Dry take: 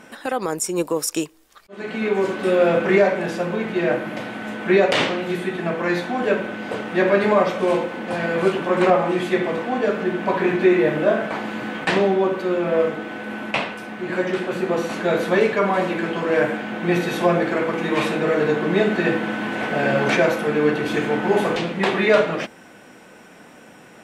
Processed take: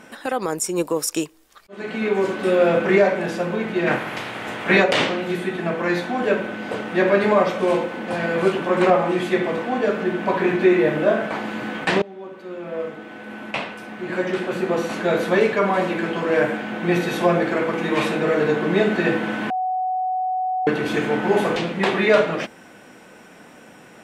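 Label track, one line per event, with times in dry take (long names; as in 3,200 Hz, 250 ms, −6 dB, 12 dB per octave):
3.860000	4.820000	ceiling on every frequency bin ceiling under each frame's peak by 15 dB
12.020000	14.500000	fade in, from −24 dB
19.500000	20.670000	beep over 744 Hz −20 dBFS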